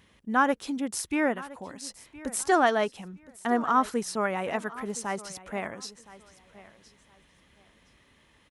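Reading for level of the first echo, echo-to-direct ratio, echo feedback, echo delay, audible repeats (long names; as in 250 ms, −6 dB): −18.5 dB, −18.5 dB, 23%, 1,017 ms, 2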